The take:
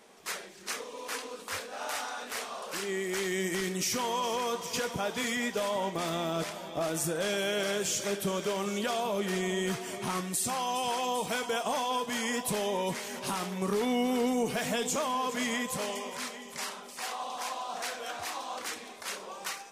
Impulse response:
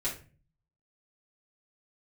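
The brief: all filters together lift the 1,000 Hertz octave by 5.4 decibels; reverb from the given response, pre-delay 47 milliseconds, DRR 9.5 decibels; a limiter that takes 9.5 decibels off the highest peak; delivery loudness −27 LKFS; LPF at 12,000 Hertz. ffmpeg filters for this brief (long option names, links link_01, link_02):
-filter_complex "[0:a]lowpass=12000,equalizer=frequency=1000:width_type=o:gain=6.5,alimiter=level_in=1.5dB:limit=-24dB:level=0:latency=1,volume=-1.5dB,asplit=2[link_01][link_02];[1:a]atrim=start_sample=2205,adelay=47[link_03];[link_02][link_03]afir=irnorm=-1:irlink=0,volume=-14dB[link_04];[link_01][link_04]amix=inputs=2:normalize=0,volume=7dB"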